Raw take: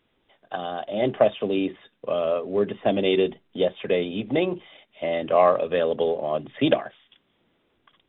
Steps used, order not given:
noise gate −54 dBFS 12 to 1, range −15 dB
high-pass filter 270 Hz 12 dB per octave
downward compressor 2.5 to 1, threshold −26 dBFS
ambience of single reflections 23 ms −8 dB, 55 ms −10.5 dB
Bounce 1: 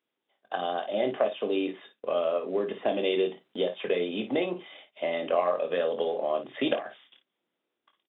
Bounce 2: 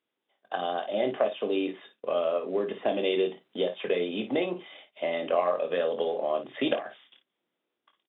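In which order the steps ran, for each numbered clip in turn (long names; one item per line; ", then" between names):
high-pass filter, then noise gate, then downward compressor, then ambience of single reflections
noise gate, then high-pass filter, then downward compressor, then ambience of single reflections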